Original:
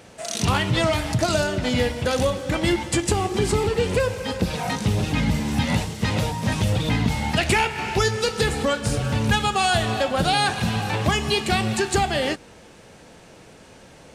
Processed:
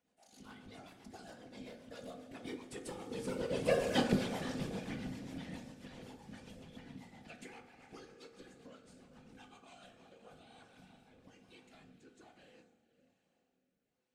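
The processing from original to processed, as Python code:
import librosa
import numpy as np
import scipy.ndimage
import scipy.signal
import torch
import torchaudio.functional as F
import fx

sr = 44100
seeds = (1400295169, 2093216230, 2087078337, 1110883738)

p1 = fx.doppler_pass(x, sr, speed_mps=25, closest_m=3.1, pass_at_s=3.96)
p2 = scipy.signal.sosfilt(scipy.signal.butter(2, 170.0, 'highpass', fs=sr, output='sos'), p1)
p3 = p2 + fx.echo_diffused(p2, sr, ms=472, feedback_pct=42, wet_db=-13.0, dry=0)
p4 = fx.rotary_switch(p3, sr, hz=7.5, then_hz=1.2, switch_at_s=9.63)
p5 = fx.whisperise(p4, sr, seeds[0])
p6 = fx.peak_eq(p5, sr, hz=230.0, db=6.0, octaves=0.63)
p7 = fx.rev_fdn(p6, sr, rt60_s=0.7, lf_ratio=1.3, hf_ratio=0.5, size_ms=12.0, drr_db=5.5)
y = p7 * 10.0 ** (-3.0 / 20.0)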